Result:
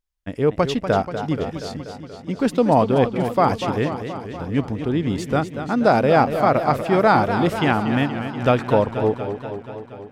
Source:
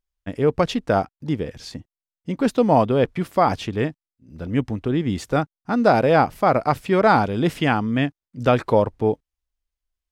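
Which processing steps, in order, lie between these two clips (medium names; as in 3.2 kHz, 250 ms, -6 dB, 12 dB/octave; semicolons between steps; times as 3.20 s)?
modulated delay 239 ms, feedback 68%, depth 128 cents, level -9.5 dB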